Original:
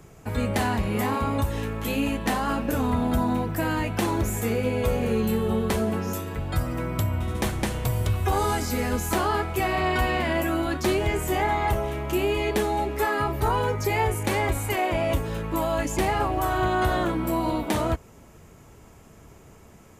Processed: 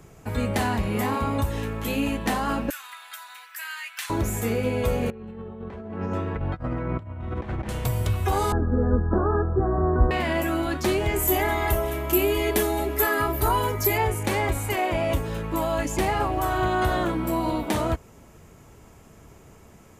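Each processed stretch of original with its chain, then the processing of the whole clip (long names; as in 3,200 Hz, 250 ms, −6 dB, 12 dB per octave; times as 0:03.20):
0:02.70–0:04.10: high-pass filter 1,500 Hz 24 dB per octave + hard clipping −18.5 dBFS
0:05.10–0:07.69: low-pass filter 1,900 Hz + compressor whose output falls as the input rises −30 dBFS, ratio −0.5
0:08.52–0:10.11: Chebyshev low-pass with heavy ripple 1,700 Hz, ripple 6 dB + spectral tilt −3.5 dB per octave
0:11.16–0:13.98: parametric band 13,000 Hz +14.5 dB 0.81 octaves + comb filter 3 ms, depth 45%
whole clip: no processing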